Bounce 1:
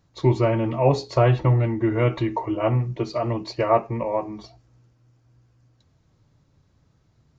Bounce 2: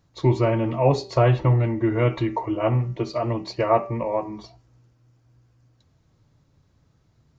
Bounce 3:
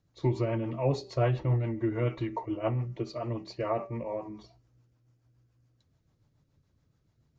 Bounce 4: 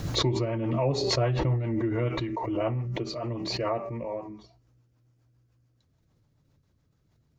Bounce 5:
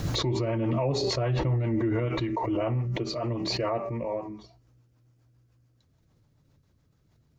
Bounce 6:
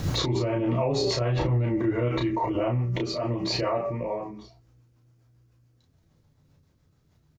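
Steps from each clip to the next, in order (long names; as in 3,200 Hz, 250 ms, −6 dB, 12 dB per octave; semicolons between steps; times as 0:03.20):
hum removal 193.9 Hz, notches 16
rotating-speaker cabinet horn 7 Hz; level −7 dB
background raised ahead of every attack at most 23 dB per second
brickwall limiter −21.5 dBFS, peak gain reduction 9 dB; level +2.5 dB
ambience of single reflections 12 ms −9.5 dB, 33 ms −3.5 dB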